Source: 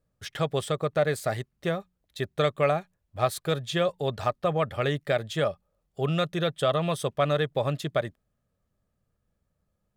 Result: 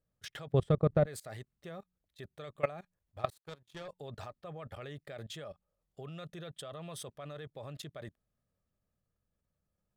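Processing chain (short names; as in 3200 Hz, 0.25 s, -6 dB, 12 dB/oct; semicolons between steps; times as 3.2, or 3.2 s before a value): 0.52–1.06 tilt -4 dB/oct; 3.3–3.88 power-law curve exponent 2; level quantiser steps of 20 dB; gain -4 dB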